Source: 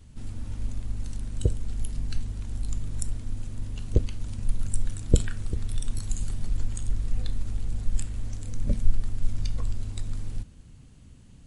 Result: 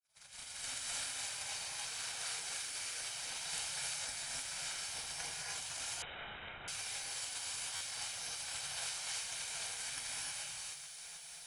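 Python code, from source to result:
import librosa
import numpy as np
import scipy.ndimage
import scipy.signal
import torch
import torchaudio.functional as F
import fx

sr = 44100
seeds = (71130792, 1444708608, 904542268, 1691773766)

p1 = fx.fade_in_head(x, sr, length_s=0.67)
p2 = scipy.signal.sosfilt(scipy.signal.butter(2, 420.0, 'highpass', fs=sr, output='sos'), p1)
p3 = fx.spec_gate(p2, sr, threshold_db=-20, keep='weak')
p4 = p3 + 0.79 * np.pad(p3, (int(1.3 * sr / 1000.0), 0))[:len(p3)]
p5 = fx.over_compress(p4, sr, threshold_db=-59.0, ratio=-0.5)
p6 = p5 * np.sin(2.0 * np.pi * 110.0 * np.arange(len(p5)) / sr)
p7 = p6 + fx.echo_wet_highpass(p6, sr, ms=322, feedback_pct=79, hz=2700.0, wet_db=-11.0, dry=0)
p8 = fx.rev_gated(p7, sr, seeds[0], gate_ms=340, shape='rising', drr_db=-5.5)
p9 = fx.freq_invert(p8, sr, carrier_hz=3800, at=(6.02, 6.68))
p10 = fx.buffer_glitch(p9, sr, at_s=(7.75,), block=512, repeats=4)
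y = p10 * librosa.db_to_amplitude(15.5)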